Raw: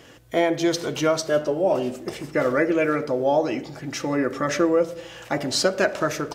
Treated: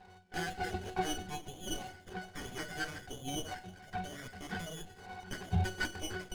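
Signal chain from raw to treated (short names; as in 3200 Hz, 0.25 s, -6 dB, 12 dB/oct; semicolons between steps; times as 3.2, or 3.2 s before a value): inverted band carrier 3900 Hz; air absorption 290 m; octave resonator F#, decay 0.23 s; running maximum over 9 samples; gain +18 dB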